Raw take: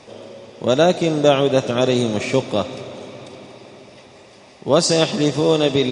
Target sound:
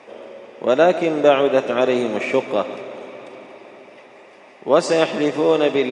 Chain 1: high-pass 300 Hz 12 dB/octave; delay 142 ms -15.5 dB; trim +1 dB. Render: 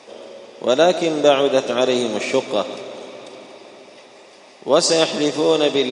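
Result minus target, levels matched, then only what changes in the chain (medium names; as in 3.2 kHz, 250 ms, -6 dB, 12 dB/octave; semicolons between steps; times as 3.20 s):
8 kHz band +10.5 dB
add after high-pass: resonant high shelf 3.1 kHz -9.5 dB, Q 1.5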